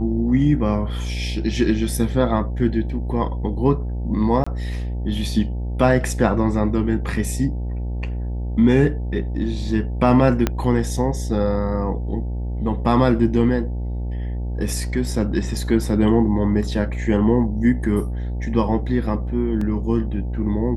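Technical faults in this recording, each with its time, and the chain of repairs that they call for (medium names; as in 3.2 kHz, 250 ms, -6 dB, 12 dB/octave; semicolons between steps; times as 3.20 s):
buzz 60 Hz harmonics 15 -25 dBFS
4.44–4.46 s: dropout 25 ms
10.47 s: pop -5 dBFS
19.61 s: dropout 3.7 ms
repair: de-click; de-hum 60 Hz, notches 15; interpolate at 4.44 s, 25 ms; interpolate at 19.61 s, 3.7 ms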